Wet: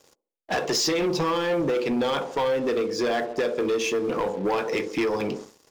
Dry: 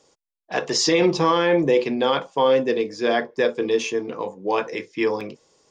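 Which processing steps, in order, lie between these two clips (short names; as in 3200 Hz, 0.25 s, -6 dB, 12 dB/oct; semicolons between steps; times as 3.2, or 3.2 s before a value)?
band-limited delay 71 ms, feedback 40%, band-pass 410 Hz, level -11 dB; compressor 5:1, threshold -31 dBFS, peak gain reduction 16 dB; sample leveller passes 3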